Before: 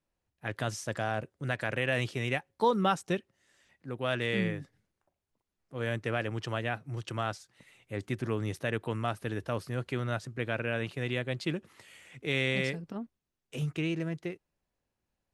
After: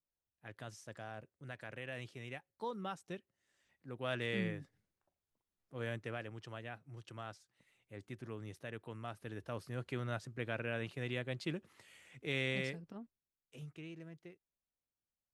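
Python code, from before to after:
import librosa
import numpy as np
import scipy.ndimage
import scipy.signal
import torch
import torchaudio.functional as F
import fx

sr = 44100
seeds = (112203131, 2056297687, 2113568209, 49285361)

y = fx.gain(x, sr, db=fx.line((3.01, -15.5), (4.14, -7.0), (5.8, -7.0), (6.37, -14.0), (8.93, -14.0), (9.89, -7.0), (12.53, -7.0), (13.79, -17.5)))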